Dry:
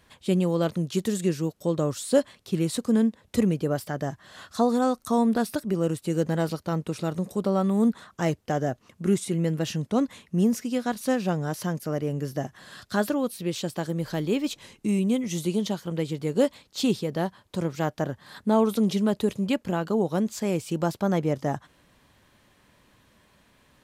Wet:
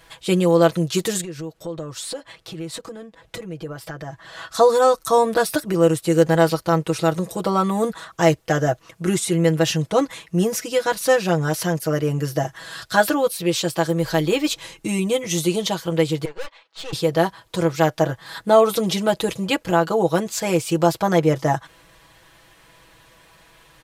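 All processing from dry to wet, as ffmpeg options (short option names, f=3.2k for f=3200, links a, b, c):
-filter_complex "[0:a]asettb=1/sr,asplit=3[a][b][c];[a]atrim=end=1.214[d];[b]atrim=start=1.21:end=4.52,asetpts=PTS-STARTPTS,afade=t=in:d=0.004:c=qsin,afade=t=out:st=3.306:d=0.004:c=qsin,highshelf=f=5.4k:g=-10,acompressor=threshold=-37dB:ratio=4:attack=3.2:release=140:knee=1:detection=peak[e];[c]atrim=start=4.516[f];[d][e]acrossfade=d=0.004:c1=hsin:c2=qsin[g];[g][f]acrossfade=d=0.004:c1=qsin:c2=hsin,asettb=1/sr,asplit=3[h][i][j];[h]atrim=end=16.254[k];[i]atrim=start=16.25:end=16.93,asetpts=PTS-STARTPTS,afade=t=in:d=0.004:c=qsin,afade=t=out:st=0.676:d=0.004:c=qsin,highpass=710,lowpass=2.5k,aeval=exprs='(tanh(79.4*val(0)+0.8)-tanh(0.8))/79.4':c=same[l];[j]atrim=start=16.926[m];[k][l]acrossfade=d=0.004:c1=hsin:c2=qsin[n];[n][m]acrossfade=d=0.004:c1=qsin:c2=hsin,equalizer=f=210:t=o:w=1.1:g=-11.5,aecho=1:1:6.1:0.83,volume=8.5dB"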